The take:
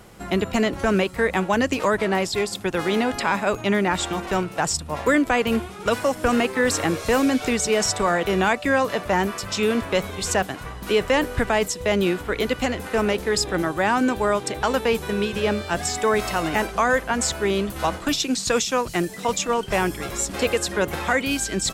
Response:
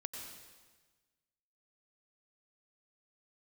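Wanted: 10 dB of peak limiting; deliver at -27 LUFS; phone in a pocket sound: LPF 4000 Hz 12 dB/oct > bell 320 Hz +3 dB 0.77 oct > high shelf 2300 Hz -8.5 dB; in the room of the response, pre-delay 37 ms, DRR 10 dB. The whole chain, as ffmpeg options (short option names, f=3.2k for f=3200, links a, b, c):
-filter_complex "[0:a]alimiter=limit=-17.5dB:level=0:latency=1,asplit=2[a][b];[1:a]atrim=start_sample=2205,adelay=37[c];[b][c]afir=irnorm=-1:irlink=0,volume=-8.5dB[d];[a][d]amix=inputs=2:normalize=0,lowpass=4k,equalizer=f=320:t=o:w=0.77:g=3,highshelf=f=2.3k:g=-8.5,volume=0.5dB"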